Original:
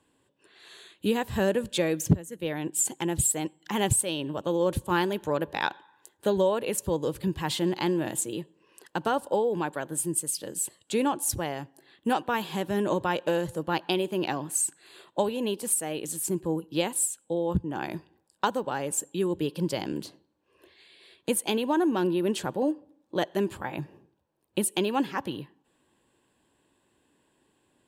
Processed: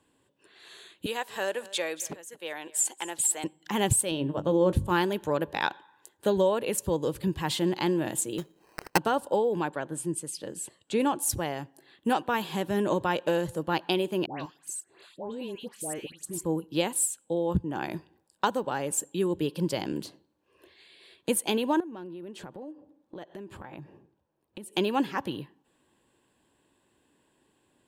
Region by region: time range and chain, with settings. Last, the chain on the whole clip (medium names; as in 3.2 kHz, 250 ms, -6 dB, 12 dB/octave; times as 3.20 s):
1.06–3.44 s: high-pass 660 Hz + peaking EQ 14 kHz -10 dB 0.24 oct + delay 230 ms -19.5 dB
4.11–4.88 s: tilt EQ -2 dB/octave + hum notches 50/100/150/200/250/300/350 Hz + doubling 21 ms -14 dB
8.38–8.98 s: treble shelf 6.2 kHz +10.5 dB + transient shaper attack +8 dB, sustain +1 dB + sample-rate reducer 3.5 kHz
9.68–11.00 s: low-pass 12 kHz 24 dB/octave + treble shelf 5.8 kHz -10.5 dB
14.26–16.45 s: treble shelf 11 kHz -9.5 dB + level held to a coarse grid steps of 18 dB + phase dispersion highs, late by 139 ms, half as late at 1.5 kHz
21.80–24.73 s: treble shelf 3.7 kHz -9 dB + compression, threshold -39 dBFS
whole clip: none